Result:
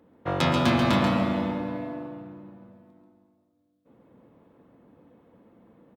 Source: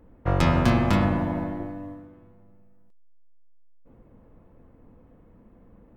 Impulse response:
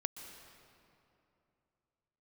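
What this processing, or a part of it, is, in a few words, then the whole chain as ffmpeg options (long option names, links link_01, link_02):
PA in a hall: -filter_complex "[0:a]highpass=170,equalizer=frequency=3600:width_type=o:width=0.53:gain=7.5,aecho=1:1:136:0.501[link_01];[1:a]atrim=start_sample=2205[link_02];[link_01][link_02]afir=irnorm=-1:irlink=0"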